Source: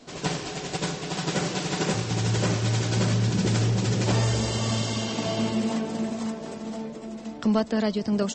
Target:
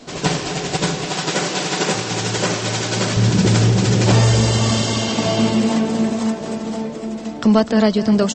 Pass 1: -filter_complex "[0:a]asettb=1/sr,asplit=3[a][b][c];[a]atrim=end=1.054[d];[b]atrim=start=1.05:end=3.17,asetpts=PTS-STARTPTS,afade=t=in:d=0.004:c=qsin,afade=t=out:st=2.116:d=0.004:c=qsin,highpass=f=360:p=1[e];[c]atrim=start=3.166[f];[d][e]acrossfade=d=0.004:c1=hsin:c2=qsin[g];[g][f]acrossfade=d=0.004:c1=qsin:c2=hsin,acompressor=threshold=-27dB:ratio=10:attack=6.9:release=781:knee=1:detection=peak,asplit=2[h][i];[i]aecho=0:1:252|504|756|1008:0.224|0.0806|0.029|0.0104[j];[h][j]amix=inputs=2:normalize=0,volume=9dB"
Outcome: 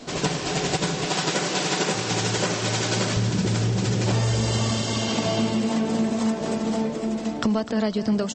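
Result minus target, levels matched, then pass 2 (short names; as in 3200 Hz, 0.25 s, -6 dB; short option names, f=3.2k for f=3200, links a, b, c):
compressor: peak gain reduction +11 dB
-filter_complex "[0:a]asettb=1/sr,asplit=3[a][b][c];[a]atrim=end=1.054[d];[b]atrim=start=1.05:end=3.17,asetpts=PTS-STARTPTS,afade=t=in:d=0.004:c=qsin,afade=t=out:st=2.116:d=0.004:c=qsin,highpass=f=360:p=1[e];[c]atrim=start=3.166[f];[d][e]acrossfade=d=0.004:c1=hsin:c2=qsin[g];[g][f]acrossfade=d=0.004:c1=qsin:c2=hsin,asplit=2[h][i];[i]aecho=0:1:252|504|756|1008:0.224|0.0806|0.029|0.0104[j];[h][j]amix=inputs=2:normalize=0,volume=9dB"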